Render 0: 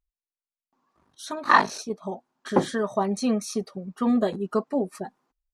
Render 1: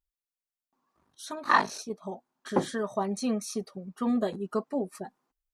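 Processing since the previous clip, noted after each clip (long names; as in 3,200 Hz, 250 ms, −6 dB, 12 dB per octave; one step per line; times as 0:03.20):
high-shelf EQ 8,900 Hz +6 dB
level −5 dB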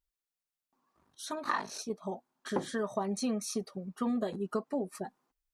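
downward compressor 12 to 1, threshold −28 dBFS, peak gain reduction 12.5 dB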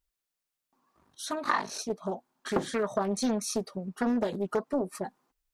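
highs frequency-modulated by the lows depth 0.53 ms
level +4.5 dB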